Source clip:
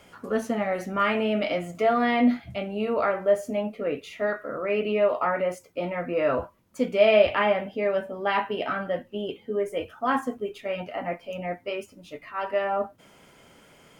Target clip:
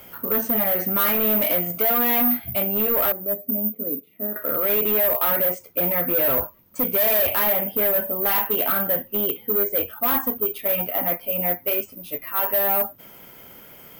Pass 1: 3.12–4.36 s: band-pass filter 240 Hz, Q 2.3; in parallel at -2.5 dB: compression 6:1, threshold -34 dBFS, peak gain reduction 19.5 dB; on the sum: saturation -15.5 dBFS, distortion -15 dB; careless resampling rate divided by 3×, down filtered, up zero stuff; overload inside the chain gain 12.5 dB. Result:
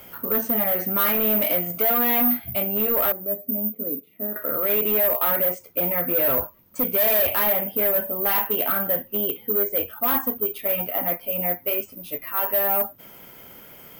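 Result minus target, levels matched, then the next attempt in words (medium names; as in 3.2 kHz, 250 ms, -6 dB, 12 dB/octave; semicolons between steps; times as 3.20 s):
saturation: distortion +14 dB; compression: peak gain reduction +6 dB
3.12–4.36 s: band-pass filter 240 Hz, Q 2.3; in parallel at -2.5 dB: compression 6:1, threshold -26.5 dBFS, peak gain reduction 13.5 dB; on the sum: saturation -5.5 dBFS, distortion -29 dB; careless resampling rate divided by 3×, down filtered, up zero stuff; overload inside the chain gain 12.5 dB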